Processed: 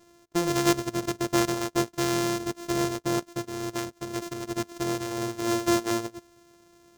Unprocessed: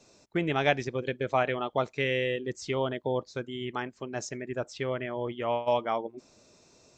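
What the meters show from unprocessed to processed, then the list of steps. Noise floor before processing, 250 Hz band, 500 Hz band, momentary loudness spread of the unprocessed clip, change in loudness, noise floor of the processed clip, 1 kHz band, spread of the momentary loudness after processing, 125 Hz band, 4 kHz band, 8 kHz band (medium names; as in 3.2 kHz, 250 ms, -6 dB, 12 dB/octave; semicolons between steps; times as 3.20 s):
-61 dBFS, +8.5 dB, -0.5 dB, 9 LU, +2.5 dB, -59 dBFS, 0.0 dB, 10 LU, +2.0 dB, +4.5 dB, +13.5 dB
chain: sorted samples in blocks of 128 samples; fifteen-band graphic EQ 400 Hz +6 dB, 2.5 kHz -3 dB, 6.3 kHz +6 dB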